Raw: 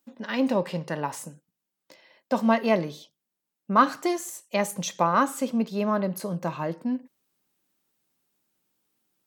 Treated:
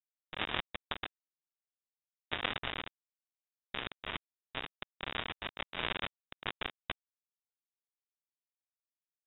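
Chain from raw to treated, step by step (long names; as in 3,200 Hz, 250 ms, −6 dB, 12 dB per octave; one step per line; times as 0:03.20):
gate on every frequency bin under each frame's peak −30 dB weak
low-shelf EQ 180 Hz +6.5 dB
in parallel at −2 dB: brickwall limiter −36.5 dBFS, peak gain reduction 9.5 dB
on the sum: sine wavefolder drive 20 dB, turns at −24.5 dBFS
phaser with its sweep stopped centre 2,400 Hz, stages 4
bit reduction 4 bits
voice inversion scrambler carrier 3,700 Hz
level +7.5 dB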